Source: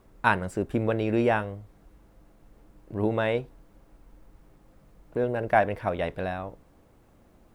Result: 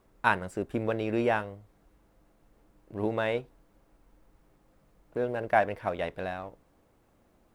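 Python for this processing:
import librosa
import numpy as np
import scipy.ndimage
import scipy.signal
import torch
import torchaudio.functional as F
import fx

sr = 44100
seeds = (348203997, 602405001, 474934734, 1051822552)

p1 = fx.low_shelf(x, sr, hz=240.0, db=-5.0)
p2 = np.sign(p1) * np.maximum(np.abs(p1) - 10.0 ** (-37.5 / 20.0), 0.0)
p3 = p1 + F.gain(torch.from_numpy(p2), -8.5).numpy()
y = F.gain(torch.from_numpy(p3), -4.5).numpy()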